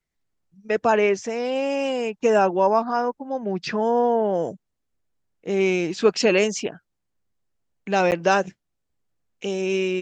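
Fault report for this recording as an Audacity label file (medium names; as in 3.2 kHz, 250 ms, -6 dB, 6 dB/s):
8.110000	8.120000	dropout 9.3 ms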